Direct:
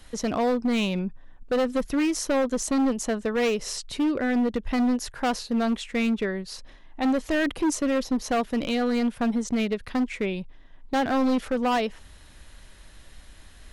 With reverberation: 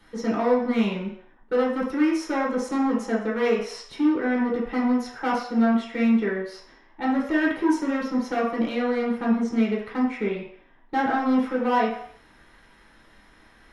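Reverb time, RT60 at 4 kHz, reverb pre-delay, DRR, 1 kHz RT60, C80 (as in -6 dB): 0.60 s, 0.65 s, 3 ms, -5.5 dB, 0.60 s, 8.0 dB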